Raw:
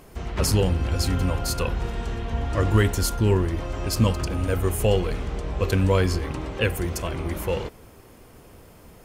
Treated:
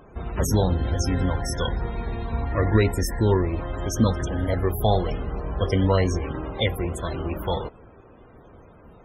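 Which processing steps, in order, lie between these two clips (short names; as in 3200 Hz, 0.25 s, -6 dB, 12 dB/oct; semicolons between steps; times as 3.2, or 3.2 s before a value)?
formant shift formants +4 st; added harmonics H 4 -39 dB, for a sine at -6.5 dBFS; loudest bins only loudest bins 64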